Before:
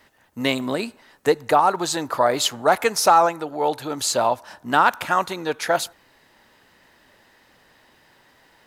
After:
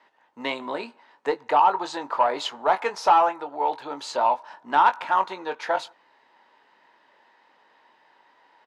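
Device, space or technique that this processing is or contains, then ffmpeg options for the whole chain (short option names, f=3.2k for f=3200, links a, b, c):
intercom: -filter_complex "[0:a]highpass=330,lowpass=3.7k,equalizer=f=930:t=o:w=0.37:g=10,asoftclip=type=tanh:threshold=-3dB,asplit=2[a][b];[b]adelay=21,volume=-9dB[c];[a][c]amix=inputs=2:normalize=0,volume=-5.5dB"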